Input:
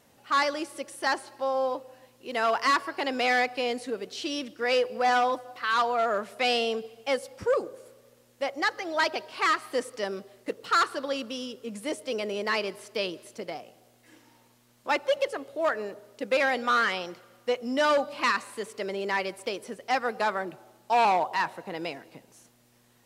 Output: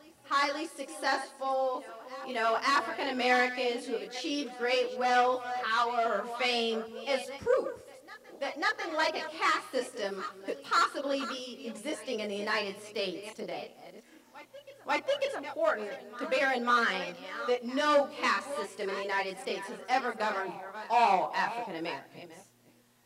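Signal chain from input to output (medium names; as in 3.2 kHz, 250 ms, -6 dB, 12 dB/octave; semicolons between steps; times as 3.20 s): chunks repeated in reverse 380 ms, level -12 dB; chorus voices 2, 0.18 Hz, delay 25 ms, depth 3.8 ms; reverse echo 545 ms -19.5 dB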